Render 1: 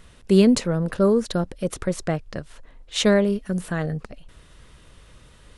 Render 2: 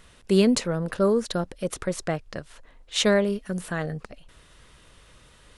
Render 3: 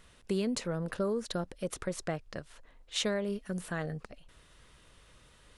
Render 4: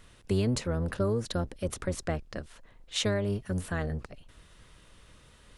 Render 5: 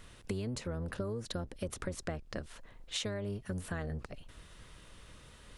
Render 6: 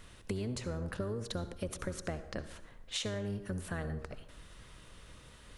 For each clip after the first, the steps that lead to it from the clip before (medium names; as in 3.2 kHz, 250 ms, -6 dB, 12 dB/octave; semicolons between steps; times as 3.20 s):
bass shelf 370 Hz -6 dB
compression 6:1, threshold -22 dBFS, peak gain reduction 8 dB; trim -6 dB
octave divider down 1 oct, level +1 dB; trim +2 dB
compression 6:1, threshold -36 dBFS, peak gain reduction 12.5 dB; trim +1.5 dB
reverberation RT60 0.95 s, pre-delay 58 ms, DRR 11.5 dB